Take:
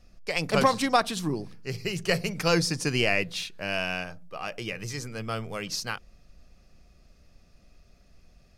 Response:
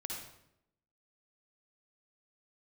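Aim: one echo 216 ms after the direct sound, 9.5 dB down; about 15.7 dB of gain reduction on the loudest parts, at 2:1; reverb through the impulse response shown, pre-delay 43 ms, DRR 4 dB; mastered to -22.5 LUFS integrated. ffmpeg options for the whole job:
-filter_complex "[0:a]acompressor=threshold=0.00501:ratio=2,aecho=1:1:216:0.335,asplit=2[s0][s1];[1:a]atrim=start_sample=2205,adelay=43[s2];[s1][s2]afir=irnorm=-1:irlink=0,volume=0.631[s3];[s0][s3]amix=inputs=2:normalize=0,volume=6.31"

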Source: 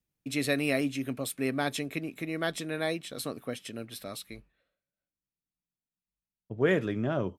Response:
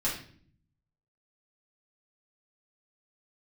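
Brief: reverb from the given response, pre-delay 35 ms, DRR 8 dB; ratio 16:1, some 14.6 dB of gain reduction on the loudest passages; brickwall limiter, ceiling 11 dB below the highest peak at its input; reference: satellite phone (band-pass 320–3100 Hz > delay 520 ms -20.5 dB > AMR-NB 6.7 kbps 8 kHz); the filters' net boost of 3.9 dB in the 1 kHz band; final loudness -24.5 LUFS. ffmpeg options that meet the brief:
-filter_complex "[0:a]equalizer=f=1000:t=o:g=6,acompressor=threshold=0.0224:ratio=16,alimiter=level_in=2.51:limit=0.0631:level=0:latency=1,volume=0.398,asplit=2[s0][s1];[1:a]atrim=start_sample=2205,adelay=35[s2];[s1][s2]afir=irnorm=-1:irlink=0,volume=0.178[s3];[s0][s3]amix=inputs=2:normalize=0,highpass=320,lowpass=3100,aecho=1:1:520:0.0944,volume=13.3" -ar 8000 -c:a libopencore_amrnb -b:a 6700

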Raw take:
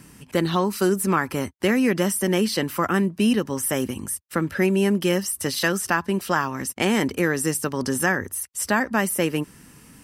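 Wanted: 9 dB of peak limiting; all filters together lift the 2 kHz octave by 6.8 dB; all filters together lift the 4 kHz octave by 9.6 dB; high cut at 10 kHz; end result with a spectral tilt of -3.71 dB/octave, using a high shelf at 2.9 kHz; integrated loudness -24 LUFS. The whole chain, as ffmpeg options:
-af "lowpass=10000,equalizer=f=2000:t=o:g=4.5,highshelf=f=2900:g=8.5,equalizer=f=4000:t=o:g=4.5,volume=0.668,alimiter=limit=0.266:level=0:latency=1"

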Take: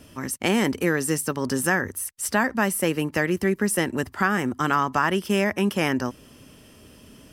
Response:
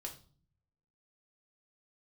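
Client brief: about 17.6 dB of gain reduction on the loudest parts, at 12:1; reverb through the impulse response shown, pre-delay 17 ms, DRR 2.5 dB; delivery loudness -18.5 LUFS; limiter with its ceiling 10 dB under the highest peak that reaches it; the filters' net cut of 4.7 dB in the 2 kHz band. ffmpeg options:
-filter_complex "[0:a]equalizer=f=2000:t=o:g=-6,acompressor=threshold=0.0158:ratio=12,alimiter=level_in=2.37:limit=0.0631:level=0:latency=1,volume=0.422,asplit=2[s0][s1];[1:a]atrim=start_sample=2205,adelay=17[s2];[s1][s2]afir=irnorm=-1:irlink=0,volume=1.06[s3];[s0][s3]amix=inputs=2:normalize=0,volume=13.3"

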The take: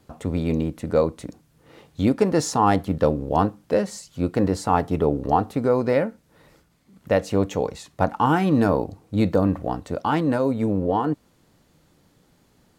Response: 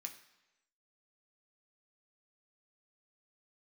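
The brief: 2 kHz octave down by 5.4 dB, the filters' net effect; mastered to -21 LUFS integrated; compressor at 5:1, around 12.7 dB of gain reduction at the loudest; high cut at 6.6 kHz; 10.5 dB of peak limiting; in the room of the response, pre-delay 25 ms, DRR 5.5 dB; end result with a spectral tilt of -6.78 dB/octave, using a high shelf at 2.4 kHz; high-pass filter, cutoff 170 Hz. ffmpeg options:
-filter_complex "[0:a]highpass=170,lowpass=6600,equalizer=f=2000:t=o:g=-5.5,highshelf=f=2400:g=-4.5,acompressor=threshold=0.0355:ratio=5,alimiter=level_in=1.19:limit=0.0631:level=0:latency=1,volume=0.841,asplit=2[s0][s1];[1:a]atrim=start_sample=2205,adelay=25[s2];[s1][s2]afir=irnorm=-1:irlink=0,volume=0.841[s3];[s0][s3]amix=inputs=2:normalize=0,volume=5.96"

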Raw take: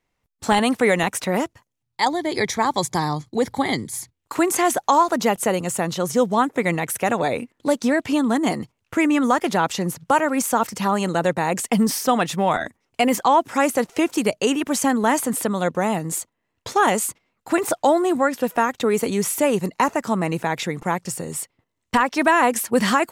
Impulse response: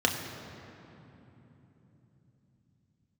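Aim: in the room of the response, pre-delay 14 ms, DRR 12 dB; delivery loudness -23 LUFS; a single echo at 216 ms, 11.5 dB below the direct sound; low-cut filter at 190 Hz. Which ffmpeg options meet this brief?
-filter_complex "[0:a]highpass=190,aecho=1:1:216:0.266,asplit=2[s0][s1];[1:a]atrim=start_sample=2205,adelay=14[s2];[s1][s2]afir=irnorm=-1:irlink=0,volume=0.0631[s3];[s0][s3]amix=inputs=2:normalize=0,volume=0.794"

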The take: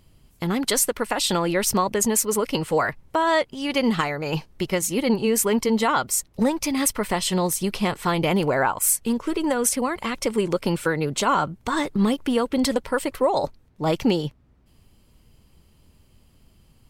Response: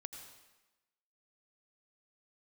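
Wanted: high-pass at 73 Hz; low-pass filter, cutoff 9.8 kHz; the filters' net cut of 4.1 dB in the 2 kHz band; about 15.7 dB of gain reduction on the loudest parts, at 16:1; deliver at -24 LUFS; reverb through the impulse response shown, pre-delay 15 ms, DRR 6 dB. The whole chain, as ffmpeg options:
-filter_complex "[0:a]highpass=73,lowpass=9800,equalizer=f=2000:t=o:g=-5.5,acompressor=threshold=0.0251:ratio=16,asplit=2[s0][s1];[1:a]atrim=start_sample=2205,adelay=15[s2];[s1][s2]afir=irnorm=-1:irlink=0,volume=0.794[s3];[s0][s3]amix=inputs=2:normalize=0,volume=3.76"

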